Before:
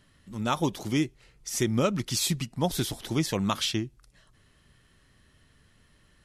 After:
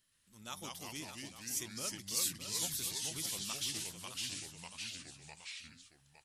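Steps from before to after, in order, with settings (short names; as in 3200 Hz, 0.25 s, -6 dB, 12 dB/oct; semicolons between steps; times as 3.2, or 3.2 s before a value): pre-emphasis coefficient 0.9; echo 0.609 s -9.5 dB; echoes that change speed 0.115 s, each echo -2 st, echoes 3; gain -5 dB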